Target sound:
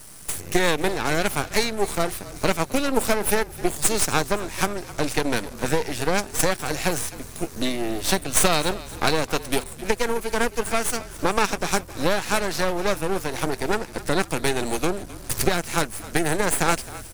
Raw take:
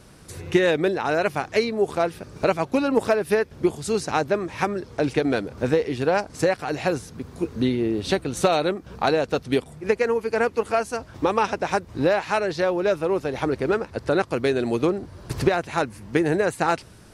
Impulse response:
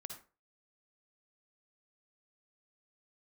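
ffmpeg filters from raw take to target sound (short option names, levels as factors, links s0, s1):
-filter_complex "[0:a]acrossover=split=240|1300|5200[s0][s1][s2][s3];[s2]dynaudnorm=f=380:g=3:m=2[s4];[s3]crystalizer=i=7.5:c=0[s5];[s0][s1][s4][s5]amix=inputs=4:normalize=0,aeval=exprs='max(val(0),0)':c=same,asplit=5[s6][s7][s8][s9][s10];[s7]adelay=262,afreqshift=-41,volume=0.133[s11];[s8]adelay=524,afreqshift=-82,volume=0.0668[s12];[s9]adelay=786,afreqshift=-123,volume=0.0335[s13];[s10]adelay=1048,afreqshift=-164,volume=0.0166[s14];[s6][s11][s12][s13][s14]amix=inputs=5:normalize=0,volume=1.19"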